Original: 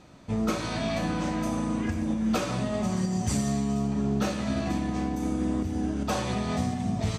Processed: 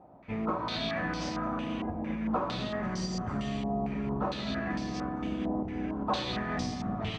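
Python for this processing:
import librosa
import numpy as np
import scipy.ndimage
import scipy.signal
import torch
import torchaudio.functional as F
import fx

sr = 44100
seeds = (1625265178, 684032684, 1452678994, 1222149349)

y = fx.octave_divider(x, sr, octaves=2, level_db=-6.0)
y = fx.highpass(y, sr, hz=130.0, slope=6)
y = fx.echo_split(y, sr, split_hz=710.0, low_ms=788, high_ms=249, feedback_pct=52, wet_db=-14.0)
y = fx.filter_held_lowpass(y, sr, hz=4.4, low_hz=780.0, high_hz=5100.0)
y = y * 10.0 ** (-5.0 / 20.0)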